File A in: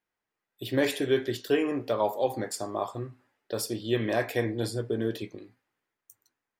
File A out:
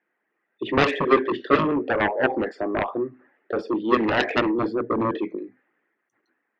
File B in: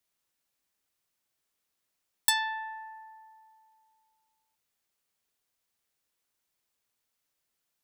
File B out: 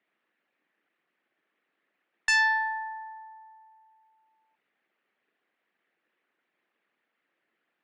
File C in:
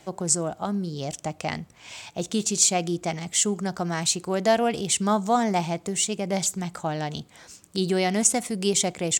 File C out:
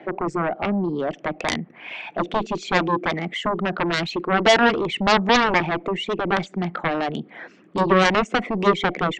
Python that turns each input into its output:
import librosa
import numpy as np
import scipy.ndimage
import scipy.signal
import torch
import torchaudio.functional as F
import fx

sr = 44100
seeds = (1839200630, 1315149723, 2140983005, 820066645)

y = fx.envelope_sharpen(x, sr, power=1.5)
y = fx.cabinet(y, sr, low_hz=190.0, low_slope=24, high_hz=2600.0, hz=(340.0, 960.0, 1800.0), db=(4, -4, 5))
y = fx.cheby_harmonics(y, sr, harmonics=(7,), levels_db=(-7,), full_scale_db=-10.5)
y = y * 10.0 ** (3.5 / 20.0)